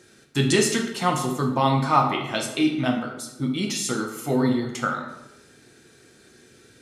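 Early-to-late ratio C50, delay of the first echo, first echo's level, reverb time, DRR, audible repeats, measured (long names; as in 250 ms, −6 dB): 6.0 dB, no echo audible, no echo audible, 0.95 s, 1.5 dB, no echo audible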